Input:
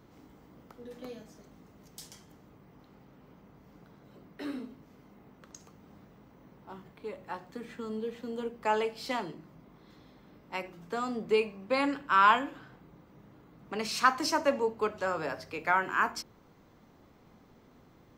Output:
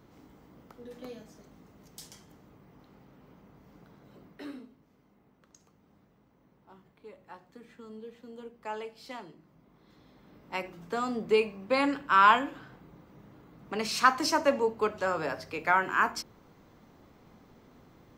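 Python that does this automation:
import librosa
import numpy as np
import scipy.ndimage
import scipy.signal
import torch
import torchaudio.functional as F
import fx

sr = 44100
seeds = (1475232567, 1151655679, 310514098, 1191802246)

y = fx.gain(x, sr, db=fx.line((4.26, 0.0), (4.71, -9.0), (9.36, -9.0), (10.54, 2.0)))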